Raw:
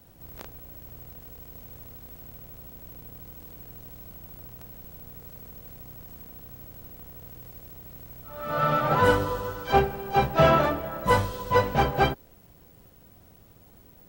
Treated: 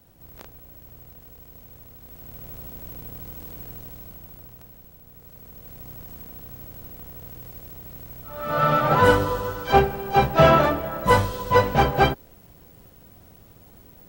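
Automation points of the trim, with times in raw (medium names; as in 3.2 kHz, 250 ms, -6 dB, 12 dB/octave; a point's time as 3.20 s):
1.95 s -1.5 dB
2.50 s +6 dB
3.68 s +6 dB
5.02 s -5 dB
5.88 s +4 dB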